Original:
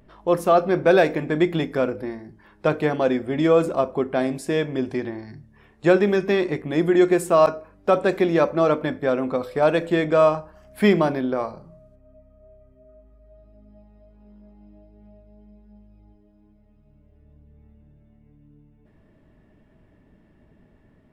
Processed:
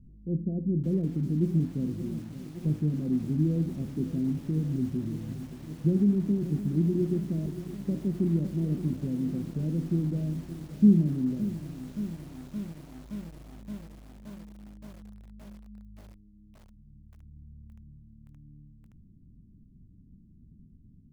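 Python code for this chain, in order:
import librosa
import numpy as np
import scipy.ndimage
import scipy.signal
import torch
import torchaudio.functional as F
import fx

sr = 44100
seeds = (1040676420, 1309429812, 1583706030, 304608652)

y = fx.env_lowpass(x, sr, base_hz=1600.0, full_db=-13.0)
y = scipy.signal.sosfilt(scipy.signal.cheby2(4, 80, [1200.0, 9200.0], 'bandstop', fs=sr, output='sos'), y)
y = fx.echo_crushed(y, sr, ms=571, feedback_pct=80, bits=8, wet_db=-13.0)
y = y * 10.0 ** (3.5 / 20.0)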